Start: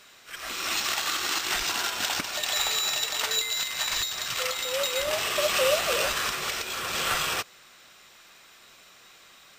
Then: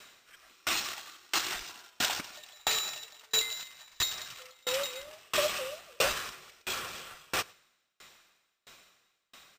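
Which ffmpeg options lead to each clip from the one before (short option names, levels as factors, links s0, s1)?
-af "aecho=1:1:106:0.0794,aeval=exprs='val(0)*pow(10,-35*if(lt(mod(1.5*n/s,1),2*abs(1.5)/1000),1-mod(1.5*n/s,1)/(2*abs(1.5)/1000),(mod(1.5*n/s,1)-2*abs(1.5)/1000)/(1-2*abs(1.5)/1000))/20)':c=same,volume=1.19"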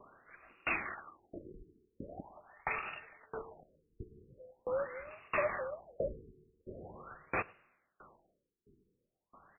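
-af "asoftclip=type=tanh:threshold=0.075,aphaser=in_gain=1:out_gain=1:delay=1.3:decay=0.28:speed=0.25:type=sinusoidal,afftfilt=real='re*lt(b*sr/1024,440*pow(2900/440,0.5+0.5*sin(2*PI*0.43*pts/sr)))':imag='im*lt(b*sr/1024,440*pow(2900/440,0.5+0.5*sin(2*PI*0.43*pts/sr)))':win_size=1024:overlap=0.75,volume=1.12"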